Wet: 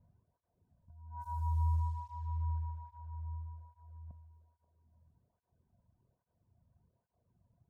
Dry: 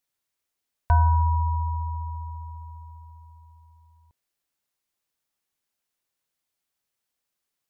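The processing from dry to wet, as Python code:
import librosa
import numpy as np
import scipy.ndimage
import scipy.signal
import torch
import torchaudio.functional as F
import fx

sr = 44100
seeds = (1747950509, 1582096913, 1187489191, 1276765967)

p1 = fx.bin_compress(x, sr, power=0.6)
p2 = fx.dereverb_blind(p1, sr, rt60_s=1.7)
p3 = fx.over_compress(p2, sr, threshold_db=-30.0, ratio=-0.5)
p4 = fx.env_lowpass(p3, sr, base_hz=430.0, full_db=-26.5)
p5 = fx.bass_treble(p4, sr, bass_db=10, treble_db=14)
p6 = p5 + fx.echo_bbd(p5, sr, ms=533, stages=4096, feedback_pct=30, wet_db=-13.0, dry=0)
p7 = fx.flanger_cancel(p6, sr, hz=1.2, depth_ms=2.8)
y = p7 * librosa.db_to_amplitude(-5.5)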